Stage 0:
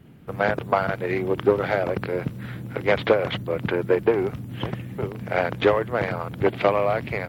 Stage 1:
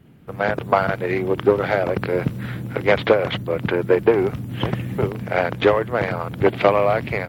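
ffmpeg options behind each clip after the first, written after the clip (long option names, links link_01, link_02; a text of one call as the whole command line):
ffmpeg -i in.wav -af "dynaudnorm=framelen=380:gausssize=3:maxgain=11.5dB,volume=-1dB" out.wav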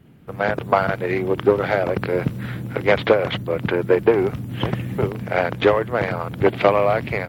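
ffmpeg -i in.wav -af anull out.wav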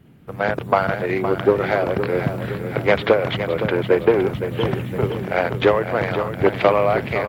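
ffmpeg -i in.wav -af "aecho=1:1:514|1028|1542|2056|2570|3084:0.335|0.174|0.0906|0.0471|0.0245|0.0127" out.wav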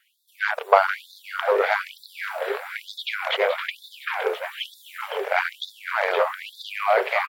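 ffmpeg -i in.wav -filter_complex "[0:a]asplit=2[link_01][link_02];[link_02]adelay=536.4,volume=-9dB,highshelf=frequency=4000:gain=-12.1[link_03];[link_01][link_03]amix=inputs=2:normalize=0,afftfilt=real='re*gte(b*sr/1024,380*pow(3500/380,0.5+0.5*sin(2*PI*1.1*pts/sr)))':imag='im*gte(b*sr/1024,380*pow(3500/380,0.5+0.5*sin(2*PI*1.1*pts/sr)))':win_size=1024:overlap=0.75,volume=2dB" out.wav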